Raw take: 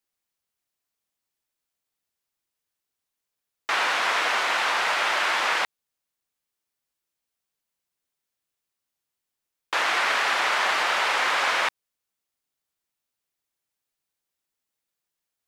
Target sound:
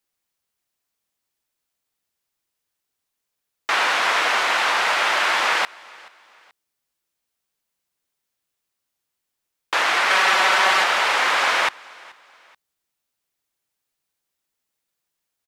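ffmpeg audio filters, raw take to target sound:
ffmpeg -i in.wav -filter_complex "[0:a]asettb=1/sr,asplit=3[link_01][link_02][link_03];[link_01]atrim=end=10.104[link_04];[link_02]atrim=start=10.1:end=10.84,asetpts=PTS-STARTPTS,afade=type=in:duration=0.004:curve=qsin,afade=type=out:start_time=0.736:duration=0.004:curve=qsin,aecho=1:1:5.3:0.83,atrim=end_sample=32634[link_05];[link_03]atrim=start=10.836[link_06];[link_04][link_05]acrossfade=duration=0.004:curve1=hsin:curve2=qsin[link_07];[link_07][link_06]acrossfade=duration=0.004:curve1=qsin:curve2=hsin,aecho=1:1:430|860:0.0631|0.0233,volume=4dB" out.wav

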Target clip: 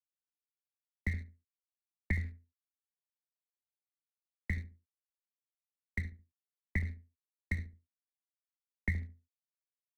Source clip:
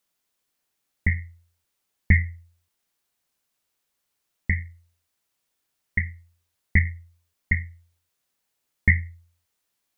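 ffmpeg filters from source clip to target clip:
ffmpeg -i in.wav -filter_complex "[0:a]flanger=delay=2.5:depth=1.3:regen=89:speed=1:shape=triangular,aeval=exprs='sgn(val(0))*max(abs(val(0))-0.01,0)':channel_layout=same,acrossover=split=95|220|550[link_01][link_02][link_03][link_04];[link_01]acompressor=threshold=-31dB:ratio=4[link_05];[link_02]acompressor=threshold=-37dB:ratio=4[link_06];[link_03]acompressor=threshold=-45dB:ratio=4[link_07];[link_04]acompressor=threshold=-36dB:ratio=4[link_08];[link_05][link_06][link_07][link_08]amix=inputs=4:normalize=0,asplit=2[link_09][link_10];[link_10]adelay=71,lowpass=frequency=810:poles=1,volume=-11dB,asplit=2[link_11][link_12];[link_12]adelay=71,lowpass=frequency=810:poles=1,volume=0.29,asplit=2[link_13][link_14];[link_14]adelay=71,lowpass=frequency=810:poles=1,volume=0.29[link_15];[link_11][link_13][link_15]amix=inputs=3:normalize=0[link_16];[link_09][link_16]amix=inputs=2:normalize=0,volume=-2dB" out.wav

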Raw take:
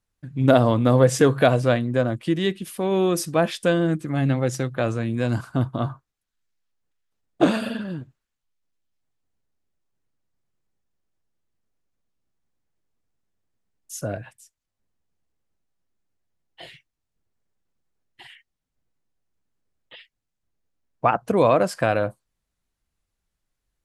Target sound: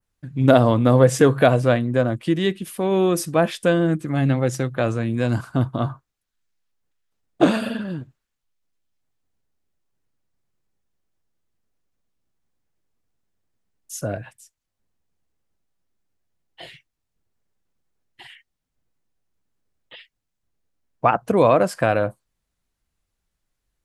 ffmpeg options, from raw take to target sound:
ffmpeg -i in.wav -af "adynamicequalizer=threshold=0.00562:dfrequency=4800:dqfactor=0.98:tfrequency=4800:tqfactor=0.98:attack=5:release=100:ratio=0.375:range=2:mode=cutabove:tftype=bell,volume=2dB" out.wav

